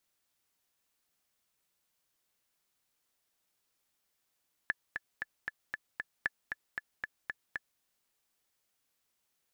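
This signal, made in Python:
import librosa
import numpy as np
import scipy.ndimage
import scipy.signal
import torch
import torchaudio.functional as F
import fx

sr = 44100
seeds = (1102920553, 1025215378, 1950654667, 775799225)

y = fx.click_track(sr, bpm=231, beats=6, bars=2, hz=1730.0, accent_db=6.0, level_db=-16.5)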